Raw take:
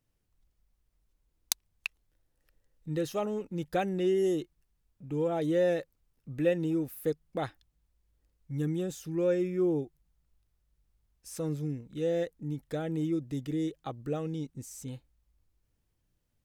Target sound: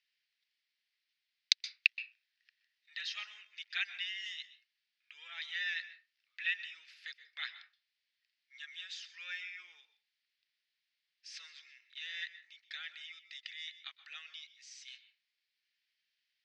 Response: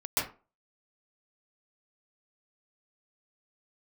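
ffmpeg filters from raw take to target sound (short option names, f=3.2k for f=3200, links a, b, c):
-filter_complex "[0:a]asuperpass=centerf=3000:order=8:qfactor=0.92,asplit=2[a][b];[1:a]atrim=start_sample=2205[c];[b][c]afir=irnorm=-1:irlink=0,volume=-20dB[d];[a][d]amix=inputs=2:normalize=0,volume=8dB"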